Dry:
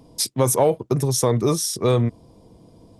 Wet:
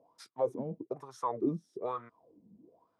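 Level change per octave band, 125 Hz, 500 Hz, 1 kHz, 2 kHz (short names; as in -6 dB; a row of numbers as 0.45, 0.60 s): -24.5, -15.5, -10.5, -21.5 dB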